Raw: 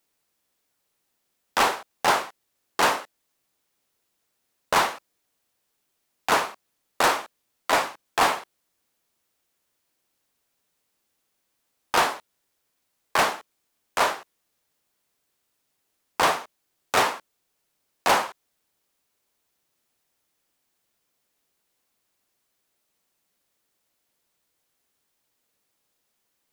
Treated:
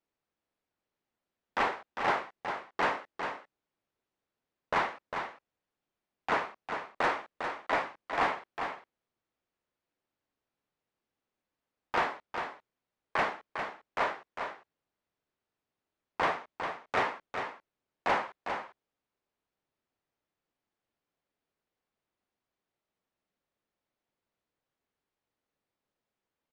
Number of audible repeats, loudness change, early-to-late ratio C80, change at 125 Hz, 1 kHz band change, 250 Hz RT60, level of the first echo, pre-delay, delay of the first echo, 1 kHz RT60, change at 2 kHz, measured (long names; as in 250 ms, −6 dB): 1, −9.5 dB, no reverb audible, −5.5 dB, −7.5 dB, no reverb audible, −7.0 dB, no reverb audible, 402 ms, no reverb audible, −6.5 dB